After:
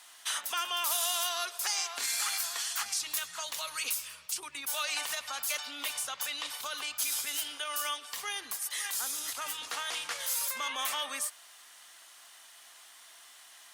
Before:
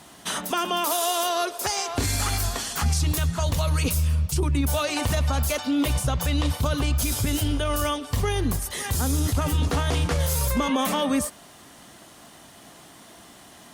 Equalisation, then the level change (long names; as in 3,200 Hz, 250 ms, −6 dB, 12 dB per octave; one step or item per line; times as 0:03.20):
high-pass filter 1,400 Hz 12 dB per octave
−3.0 dB